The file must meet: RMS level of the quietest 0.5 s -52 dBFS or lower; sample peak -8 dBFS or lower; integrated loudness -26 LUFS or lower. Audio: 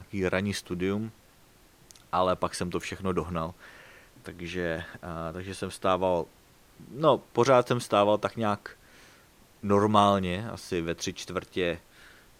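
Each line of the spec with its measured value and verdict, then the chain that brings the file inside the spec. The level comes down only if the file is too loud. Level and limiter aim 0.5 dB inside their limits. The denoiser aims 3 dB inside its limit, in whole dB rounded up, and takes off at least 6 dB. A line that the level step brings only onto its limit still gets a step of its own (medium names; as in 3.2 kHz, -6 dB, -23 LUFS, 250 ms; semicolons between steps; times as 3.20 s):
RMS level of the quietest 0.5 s -58 dBFS: pass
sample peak -6.0 dBFS: fail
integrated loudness -28.0 LUFS: pass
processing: peak limiter -8.5 dBFS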